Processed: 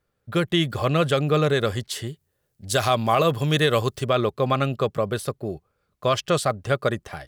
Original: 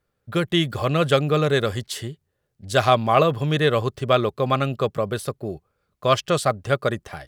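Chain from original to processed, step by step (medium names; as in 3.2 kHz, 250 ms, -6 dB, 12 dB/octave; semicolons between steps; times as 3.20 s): peak limiter -10 dBFS, peak gain reduction 6 dB; 2.06–4.06 s: treble shelf 6.9 kHz -> 3.9 kHz +10.5 dB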